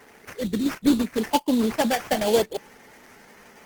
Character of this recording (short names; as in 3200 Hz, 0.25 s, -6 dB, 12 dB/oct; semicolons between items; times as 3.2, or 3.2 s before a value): aliases and images of a low sample rate 3900 Hz, jitter 20%; Opus